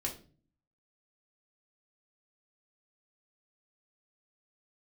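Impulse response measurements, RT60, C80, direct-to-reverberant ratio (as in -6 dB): 0.40 s, 16.0 dB, -1.5 dB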